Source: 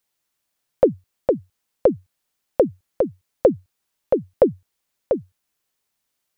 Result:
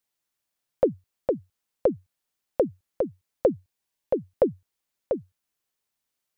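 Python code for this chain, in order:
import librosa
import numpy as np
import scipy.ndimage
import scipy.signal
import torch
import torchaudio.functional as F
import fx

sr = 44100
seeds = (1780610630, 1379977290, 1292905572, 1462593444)

y = fx.notch(x, sr, hz=1300.0, q=6.2, at=(3.52, 4.14))
y = y * librosa.db_to_amplitude(-6.0)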